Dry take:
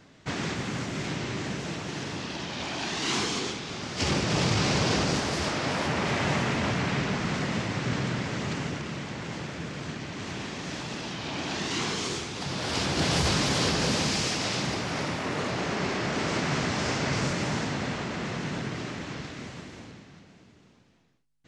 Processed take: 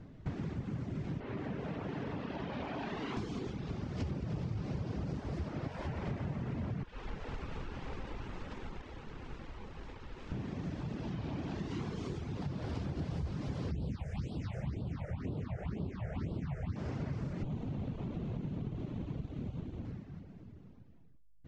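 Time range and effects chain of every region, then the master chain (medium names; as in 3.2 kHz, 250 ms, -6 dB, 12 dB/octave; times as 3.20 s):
1.20–3.17 s: three-band isolator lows -12 dB, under 260 Hz, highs -13 dB, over 3.6 kHz + band-stop 340 Hz, Q 7.5 + level flattener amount 50%
5.67–6.07 s: peaking EQ 220 Hz -8 dB 2.1 oct + band-stop 1.2 kHz, Q 13
6.83–10.32 s: high-pass 920 Hz 6 dB/octave + treble shelf 8.8 kHz -6 dB + ring modulator 660 Hz
13.71–16.76 s: peaking EQ 73 Hz +5 dB 1.1 oct + phase shifter stages 6, 2 Hz, lowest notch 260–1900 Hz
17.43–19.85 s: comb filter that takes the minimum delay 0.3 ms + distance through air 67 m
whole clip: reverb removal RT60 0.56 s; tilt EQ -4.5 dB/octave; compression 6:1, threshold -30 dBFS; trim -5.5 dB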